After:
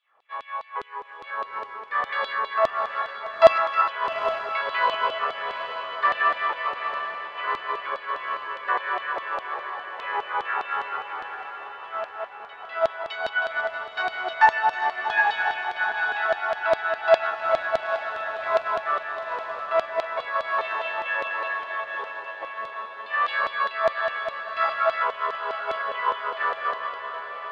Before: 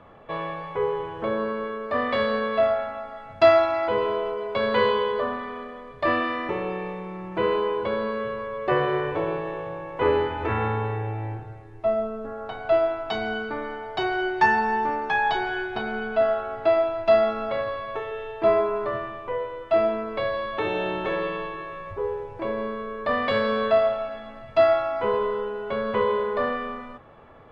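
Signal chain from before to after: regenerating reverse delay 0.159 s, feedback 69%, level -5.5 dB; dynamic EQ 1500 Hz, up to +7 dB, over -37 dBFS, Q 1; in parallel at -1 dB: limiter -13.5 dBFS, peak gain reduction 10 dB; on the sum: LFO high-pass saw down 4.9 Hz 640–3900 Hz; on a send: diffused feedback echo 0.848 s, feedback 66%, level -6 dB; on the sum: upward expander 1.5:1, over -29 dBFS; gain -6 dB

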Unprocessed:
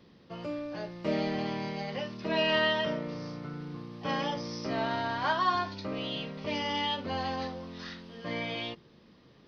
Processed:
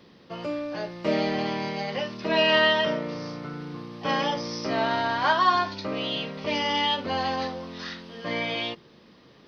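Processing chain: low shelf 190 Hz -8 dB; gain +7 dB

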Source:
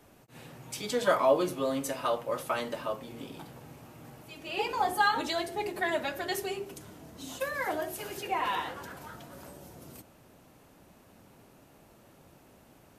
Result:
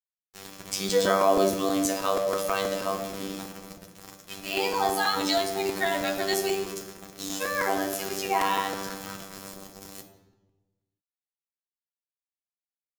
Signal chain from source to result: bell 5700 Hz +5.5 dB 1.6 oct; in parallel at -1 dB: limiter -23 dBFS, peak gain reduction 11 dB; on the sum: requantised 6-bit, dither none; robotiser 97.4 Hz; on a send at -3.5 dB: reverb RT60 1.2 s, pre-delay 3 ms; on the sum: crackling interface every 0.16 s, samples 128, repeat, from 0.73

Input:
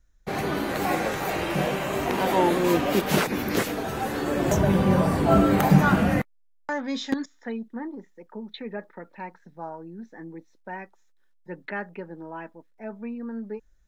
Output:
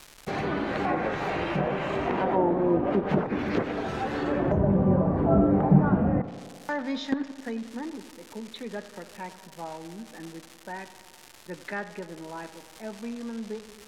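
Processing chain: crackle 410/s -32 dBFS; treble ducked by the level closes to 780 Hz, closed at -18 dBFS; tape echo 91 ms, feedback 83%, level -14.5 dB, low-pass 2400 Hz; gain -1.5 dB

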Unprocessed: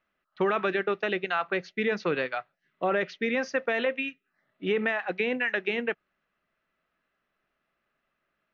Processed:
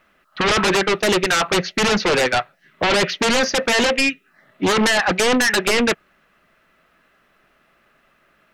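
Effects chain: in parallel at -1.5 dB: sine folder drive 16 dB, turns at -13 dBFS; on the sum: Doppler distortion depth 0.13 ms

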